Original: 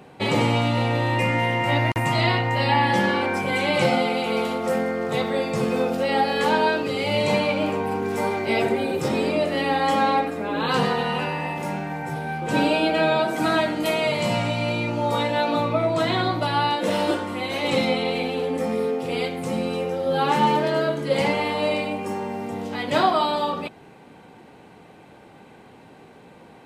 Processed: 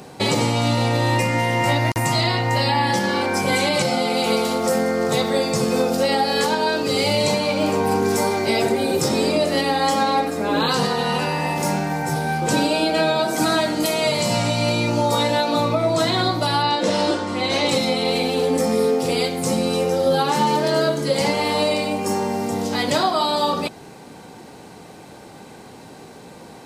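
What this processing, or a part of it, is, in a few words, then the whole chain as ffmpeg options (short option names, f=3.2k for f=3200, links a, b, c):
over-bright horn tweeter: -filter_complex "[0:a]asettb=1/sr,asplit=3[a][b][c];[a]atrim=end=16.624[d];[b]atrim=start=16.62:end=17.69,asetpts=PTS-STARTPTS,afade=t=in:d=0.004:c=qsin,afade=t=out:st=1.066:d=0.004:c=qsin,lowpass=5.8k[e];[c]atrim=start=17.686[f];[d][e]acrossfade=d=0.004:c1=hsin:c2=qsin[g];[g][f]acrossfade=d=0.004:c1=qsin:c2=hsin,highshelf=f=3.8k:t=q:w=1.5:g=8.5,alimiter=limit=-16dB:level=0:latency=1:release=422,volume=6.5dB"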